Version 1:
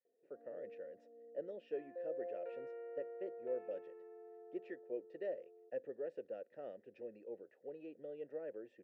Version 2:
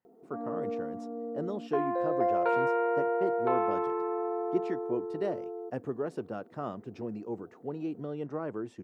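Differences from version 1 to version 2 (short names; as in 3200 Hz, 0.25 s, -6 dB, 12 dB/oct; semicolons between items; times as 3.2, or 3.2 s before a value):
background +11.5 dB; master: remove vowel filter e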